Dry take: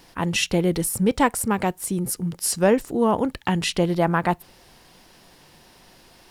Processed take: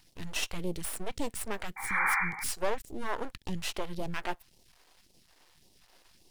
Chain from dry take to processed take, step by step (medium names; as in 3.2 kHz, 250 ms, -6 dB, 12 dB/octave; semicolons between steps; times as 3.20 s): half-wave rectifier; painted sound noise, 1.76–2.44 s, 760–2400 Hz -22 dBFS; phase shifter stages 2, 1.8 Hz, lowest notch 100–1500 Hz; trim -6.5 dB